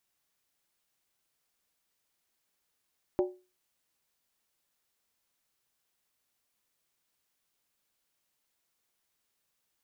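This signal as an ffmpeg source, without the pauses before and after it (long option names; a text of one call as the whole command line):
ffmpeg -f lavfi -i "aevalsrc='0.0891*pow(10,-3*t/0.31)*sin(2*PI*365*t)+0.0398*pow(10,-3*t/0.246)*sin(2*PI*581.8*t)+0.0178*pow(10,-3*t/0.212)*sin(2*PI*779.6*t)+0.00794*pow(10,-3*t/0.205)*sin(2*PI*838*t)+0.00355*pow(10,-3*t/0.19)*sin(2*PI*968.3*t)':duration=0.63:sample_rate=44100" out.wav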